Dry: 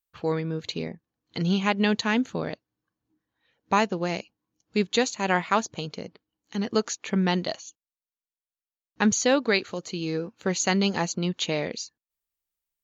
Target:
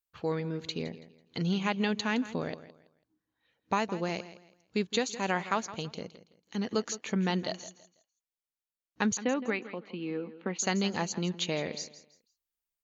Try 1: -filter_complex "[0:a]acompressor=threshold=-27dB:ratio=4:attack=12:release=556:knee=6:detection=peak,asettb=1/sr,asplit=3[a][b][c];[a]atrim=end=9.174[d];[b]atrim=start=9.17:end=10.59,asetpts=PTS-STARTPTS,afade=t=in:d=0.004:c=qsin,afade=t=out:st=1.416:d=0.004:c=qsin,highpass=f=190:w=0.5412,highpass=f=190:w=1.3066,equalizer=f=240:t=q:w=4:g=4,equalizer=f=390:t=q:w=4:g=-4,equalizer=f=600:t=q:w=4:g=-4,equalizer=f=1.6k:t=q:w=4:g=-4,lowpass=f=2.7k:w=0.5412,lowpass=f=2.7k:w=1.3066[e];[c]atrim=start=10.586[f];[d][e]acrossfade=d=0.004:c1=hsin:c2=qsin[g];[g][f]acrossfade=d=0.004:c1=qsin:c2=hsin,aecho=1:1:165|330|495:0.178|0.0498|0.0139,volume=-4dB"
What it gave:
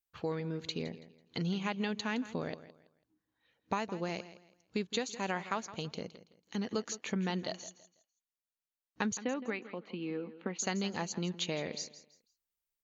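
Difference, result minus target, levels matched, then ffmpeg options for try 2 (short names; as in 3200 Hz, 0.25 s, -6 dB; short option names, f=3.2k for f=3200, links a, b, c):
compressor: peak gain reduction +6.5 dB
-filter_complex "[0:a]acompressor=threshold=-18.5dB:ratio=4:attack=12:release=556:knee=6:detection=peak,asettb=1/sr,asplit=3[a][b][c];[a]atrim=end=9.174[d];[b]atrim=start=9.17:end=10.59,asetpts=PTS-STARTPTS,afade=t=in:d=0.004:c=qsin,afade=t=out:st=1.416:d=0.004:c=qsin,highpass=f=190:w=0.5412,highpass=f=190:w=1.3066,equalizer=f=240:t=q:w=4:g=4,equalizer=f=390:t=q:w=4:g=-4,equalizer=f=600:t=q:w=4:g=-4,equalizer=f=1.6k:t=q:w=4:g=-4,lowpass=f=2.7k:w=0.5412,lowpass=f=2.7k:w=1.3066[e];[c]atrim=start=10.586[f];[d][e]acrossfade=d=0.004:c1=hsin:c2=qsin[g];[g][f]acrossfade=d=0.004:c1=qsin:c2=hsin,aecho=1:1:165|330|495:0.178|0.0498|0.0139,volume=-4dB"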